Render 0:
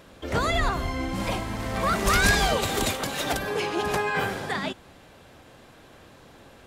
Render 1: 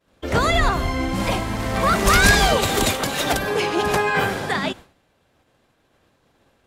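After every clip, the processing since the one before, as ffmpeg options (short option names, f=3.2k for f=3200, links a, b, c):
-af "agate=range=-33dB:threshold=-38dB:ratio=3:detection=peak,volume=6dB"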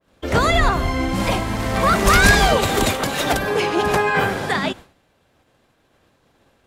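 -af "adynamicequalizer=threshold=0.0355:dfrequency=2600:dqfactor=0.7:tfrequency=2600:tqfactor=0.7:attack=5:release=100:ratio=0.375:range=2:mode=cutabove:tftype=highshelf,volume=2dB"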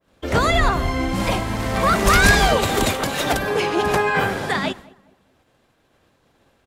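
-filter_complex "[0:a]asplit=2[a][b];[b]adelay=207,lowpass=f=1.5k:p=1,volume=-22dB,asplit=2[c][d];[d]adelay=207,lowpass=f=1.5k:p=1,volume=0.37,asplit=2[e][f];[f]adelay=207,lowpass=f=1.5k:p=1,volume=0.37[g];[a][c][e][g]amix=inputs=4:normalize=0,volume=-1dB"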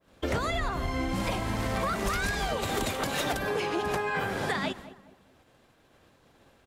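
-af "acompressor=threshold=-26dB:ratio=12"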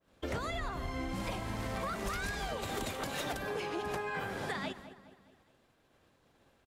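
-af "aecho=1:1:207|414|621|828:0.0708|0.0418|0.0246|0.0145,volume=-7.5dB"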